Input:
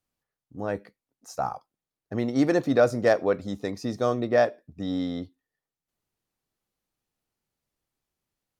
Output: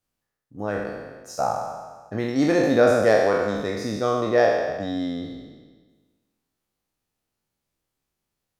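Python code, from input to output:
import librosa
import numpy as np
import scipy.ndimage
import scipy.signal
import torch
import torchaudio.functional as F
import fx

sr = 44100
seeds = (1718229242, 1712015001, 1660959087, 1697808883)

y = fx.spec_trails(x, sr, decay_s=1.43)
y = fx.doubler(y, sr, ms=19.0, db=-11)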